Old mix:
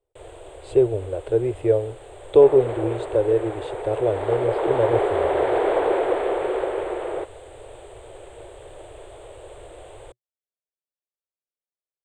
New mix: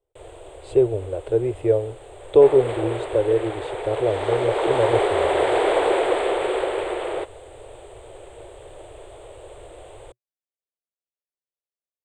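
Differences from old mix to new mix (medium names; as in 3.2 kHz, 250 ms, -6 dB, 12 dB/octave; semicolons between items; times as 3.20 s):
second sound: remove low-pass 1.1 kHz 6 dB/octave; master: add peaking EQ 1.6 kHz -2 dB 0.34 oct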